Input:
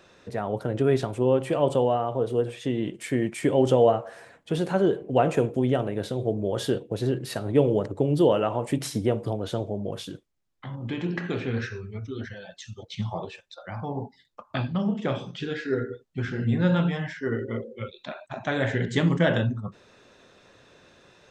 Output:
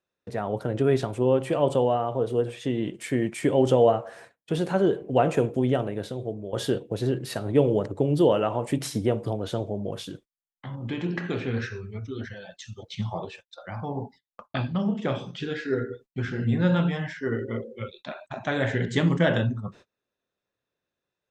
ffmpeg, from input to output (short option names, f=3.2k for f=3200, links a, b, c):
-filter_complex "[0:a]asplit=2[a][b];[a]atrim=end=6.53,asetpts=PTS-STARTPTS,afade=t=out:st=5.74:d=0.79:silence=0.298538[c];[b]atrim=start=6.53,asetpts=PTS-STARTPTS,afade=t=in:d=0.004:c=hsin:silence=0.298538[d];[c][d]concat=n=2:v=0:a=1,agate=range=-31dB:threshold=-47dB:ratio=16:detection=peak"